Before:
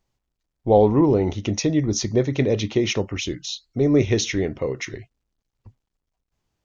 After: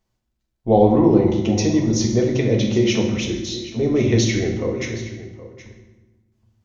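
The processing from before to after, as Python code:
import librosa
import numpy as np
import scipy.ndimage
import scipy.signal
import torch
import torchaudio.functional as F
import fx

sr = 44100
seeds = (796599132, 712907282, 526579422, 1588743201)

y = x + 10.0 ** (-16.0 / 20.0) * np.pad(x, (int(770 * sr / 1000.0), 0))[:len(x)]
y = fx.rev_fdn(y, sr, rt60_s=1.1, lf_ratio=1.55, hf_ratio=0.75, size_ms=27.0, drr_db=0.0)
y = y * 10.0 ** (-1.5 / 20.0)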